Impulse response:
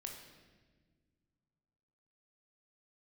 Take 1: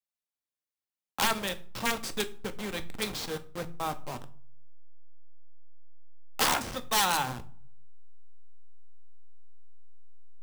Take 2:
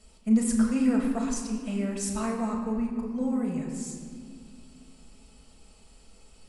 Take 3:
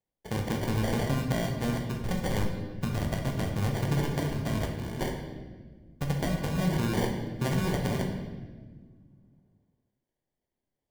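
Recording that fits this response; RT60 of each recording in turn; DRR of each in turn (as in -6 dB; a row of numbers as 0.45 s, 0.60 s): 3; 0.50 s, 2.1 s, 1.5 s; 9.0 dB, -1.5 dB, 1.5 dB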